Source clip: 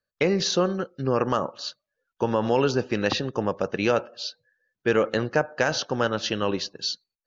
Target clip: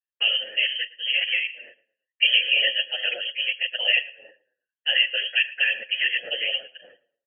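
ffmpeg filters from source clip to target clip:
ffmpeg -i in.wav -filter_complex "[0:a]asettb=1/sr,asplit=3[link_01][link_02][link_03];[link_01]atrim=end=1.494[link_04];[link_02]atrim=start=1.49:end=2.38,asetpts=PTS-STARTPTS,afade=type=in:duration=0.004:curve=qsin,afade=type=out:start_time=0.886:duration=0.004:curve=qsin,equalizer=frequency=230:width_type=o:width=2.9:gain=10[link_05];[link_03]atrim=start=2.376[link_06];[link_04][link_05]acrossfade=duration=0.004:curve1=hsin:curve2=qsin[link_07];[link_07][link_06]acrossfade=duration=0.004:curve1=qsin:curve2=hsin,agate=range=-15dB:threshold=-44dB:ratio=16:detection=peak,acrossover=split=380|1100[link_08][link_09][link_10];[link_10]asoftclip=type=hard:threshold=-28.5dB[link_11];[link_08][link_09][link_11]amix=inputs=3:normalize=0,afftfilt=real='hypot(re,im)*cos(2*PI*random(0))':imag='hypot(re,im)*sin(2*PI*random(1))':win_size=512:overlap=0.75,apsyclip=15.5dB,lowpass=frequency=2800:width_type=q:width=0.5098,lowpass=frequency=2800:width_type=q:width=0.6013,lowpass=frequency=2800:width_type=q:width=0.9,lowpass=frequency=2800:width_type=q:width=2.563,afreqshift=-3300,asplit=3[link_12][link_13][link_14];[link_12]bandpass=frequency=530:width_type=q:width=8,volume=0dB[link_15];[link_13]bandpass=frequency=1840:width_type=q:width=8,volume=-6dB[link_16];[link_14]bandpass=frequency=2480:width_type=q:width=8,volume=-9dB[link_17];[link_15][link_16][link_17]amix=inputs=3:normalize=0,asplit=2[link_18][link_19];[link_19]adelay=112,lowpass=frequency=2400:poles=1,volume=-18dB,asplit=2[link_20][link_21];[link_21]adelay=112,lowpass=frequency=2400:poles=1,volume=0.31,asplit=2[link_22][link_23];[link_23]adelay=112,lowpass=frequency=2400:poles=1,volume=0.31[link_24];[link_20][link_22][link_24]amix=inputs=3:normalize=0[link_25];[link_18][link_25]amix=inputs=2:normalize=0,asplit=2[link_26][link_27];[link_27]adelay=7.9,afreqshift=-1.3[link_28];[link_26][link_28]amix=inputs=2:normalize=1,volume=6dB" out.wav

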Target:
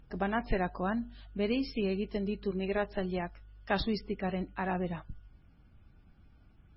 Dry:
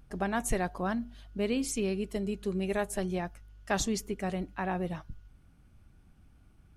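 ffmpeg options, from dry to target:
ffmpeg -i in.wav -filter_complex "[0:a]asettb=1/sr,asplit=3[link_01][link_02][link_03];[link_01]atrim=end=2.514[link_04];[link_02]atrim=start=2.51:end=3.88,asetpts=PTS-STARTPTS,afade=type=in:duration=0.004:curve=qsin,afade=type=out:start_time=1.366:duration=0.004:curve=qsin,adynamicequalizer=threshold=0.00398:dfrequency=140:dqfactor=1.6:tfrequency=140:tqfactor=1.6:attack=5:release=100:ratio=0.375:range=2:mode=cutabove:tftype=bell[link_05];[link_03]atrim=start=3.876[link_06];[link_04][link_05]acrossfade=duration=0.004:curve1=hsin:curve2=qsin[link_07];[link_07][link_06]acrossfade=duration=0.004:curve1=qsin:curve2=hsin" -ar 22050 -c:a libmp3lame -b:a 16k out.mp3

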